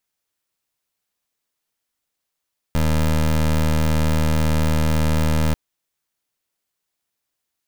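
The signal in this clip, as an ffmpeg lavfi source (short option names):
-f lavfi -i "aevalsrc='0.133*(2*lt(mod(78.1*t,1),0.21)-1)':d=2.79:s=44100"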